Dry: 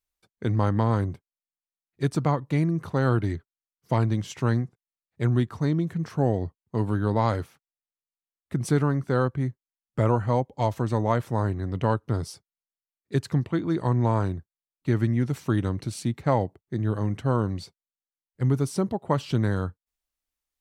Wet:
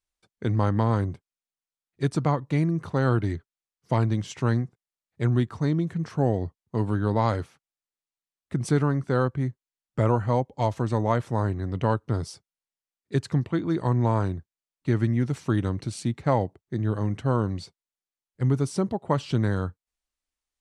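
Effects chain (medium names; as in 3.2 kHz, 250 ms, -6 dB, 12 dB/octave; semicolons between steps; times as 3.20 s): low-pass 10 kHz 24 dB/octave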